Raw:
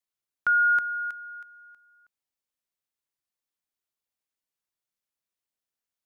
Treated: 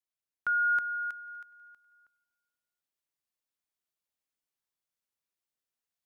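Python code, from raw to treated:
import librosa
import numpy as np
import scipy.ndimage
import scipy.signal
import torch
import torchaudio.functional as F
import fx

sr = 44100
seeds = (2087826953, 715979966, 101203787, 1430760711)

y = fx.rider(x, sr, range_db=10, speed_s=0.5)
y = fx.echo_feedback(y, sr, ms=246, feedback_pct=50, wet_db=-24)
y = y * librosa.db_to_amplitude(-3.0)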